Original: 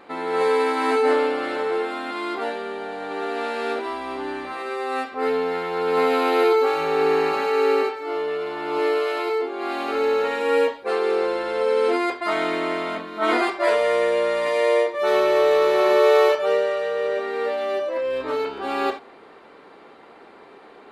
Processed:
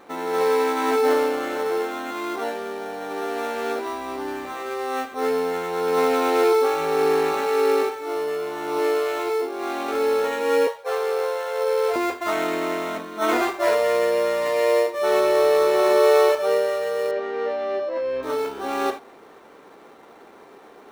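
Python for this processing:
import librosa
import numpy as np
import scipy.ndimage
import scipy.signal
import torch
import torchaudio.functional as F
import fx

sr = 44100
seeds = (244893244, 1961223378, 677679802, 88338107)

p1 = fx.ellip_highpass(x, sr, hz=450.0, order=4, stop_db=40, at=(10.67, 11.96))
p2 = fx.sample_hold(p1, sr, seeds[0], rate_hz=4800.0, jitter_pct=0)
p3 = p1 + (p2 * librosa.db_to_amplitude(-6.0))
p4 = fx.air_absorb(p3, sr, metres=200.0, at=(17.11, 18.23))
y = p4 * librosa.db_to_amplitude(-3.5)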